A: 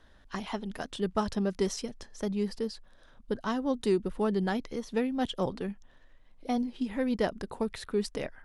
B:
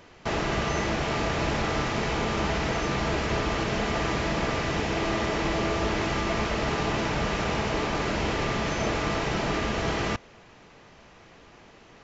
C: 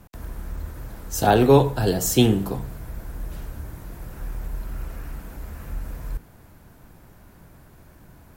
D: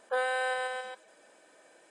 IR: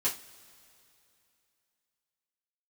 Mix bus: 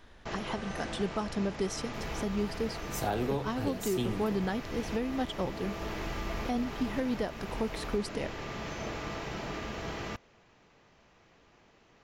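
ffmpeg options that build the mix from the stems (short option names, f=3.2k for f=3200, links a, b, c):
-filter_complex "[0:a]volume=2.5dB[a];[1:a]volume=-10.5dB[b];[2:a]adelay=1800,volume=-10dB[c];[3:a]adelay=350,volume=-14.5dB[d];[a][b][c][d]amix=inputs=4:normalize=0,alimiter=limit=-21dB:level=0:latency=1:release=481"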